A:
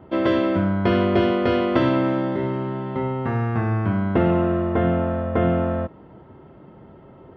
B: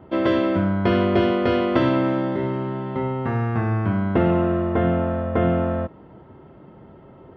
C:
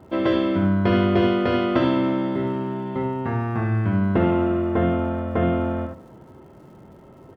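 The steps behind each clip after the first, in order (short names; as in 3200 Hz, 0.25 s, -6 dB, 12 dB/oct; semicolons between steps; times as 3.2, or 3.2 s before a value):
nothing audible
crackle 210/s -50 dBFS; echo 72 ms -7.5 dB; on a send at -19 dB: reverb RT60 1.7 s, pre-delay 27 ms; on the sum: gain -1.5 dB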